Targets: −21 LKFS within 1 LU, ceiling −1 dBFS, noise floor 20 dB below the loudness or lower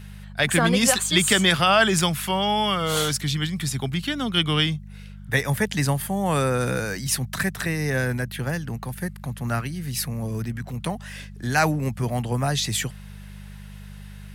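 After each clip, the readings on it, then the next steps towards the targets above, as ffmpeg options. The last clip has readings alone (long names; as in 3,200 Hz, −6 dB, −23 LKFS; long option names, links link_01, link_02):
mains hum 50 Hz; hum harmonics up to 200 Hz; level of the hum −38 dBFS; integrated loudness −23.0 LKFS; sample peak −5.5 dBFS; target loudness −21.0 LKFS
→ -af "bandreject=frequency=50:width_type=h:width=4,bandreject=frequency=100:width_type=h:width=4,bandreject=frequency=150:width_type=h:width=4,bandreject=frequency=200:width_type=h:width=4"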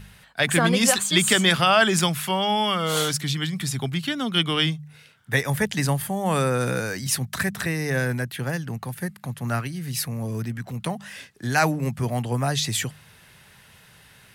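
mains hum none found; integrated loudness −23.5 LKFS; sample peak −5.5 dBFS; target loudness −21.0 LKFS
→ -af "volume=2.5dB"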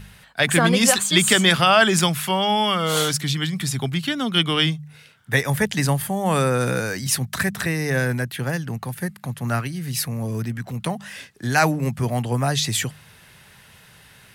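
integrated loudness −21.0 LKFS; sample peak −3.0 dBFS; background noise floor −50 dBFS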